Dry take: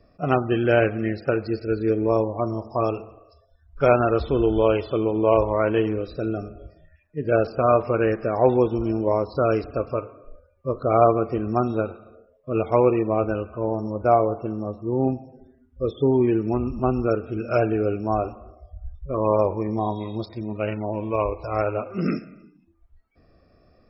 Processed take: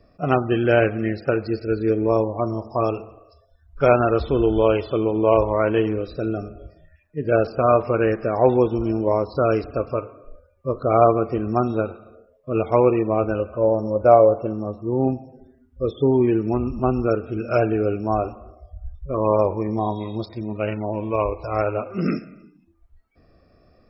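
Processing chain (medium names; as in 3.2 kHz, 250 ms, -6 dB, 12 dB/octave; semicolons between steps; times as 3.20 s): 13.39–14.53 s: peaking EQ 550 Hz +10.5 dB 0.25 oct; trim +1.5 dB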